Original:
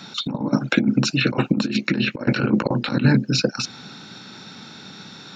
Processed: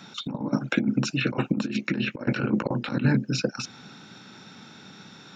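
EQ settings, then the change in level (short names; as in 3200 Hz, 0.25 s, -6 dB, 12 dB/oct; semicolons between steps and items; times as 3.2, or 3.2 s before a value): bell 4300 Hz -8 dB 0.35 oct; -5.5 dB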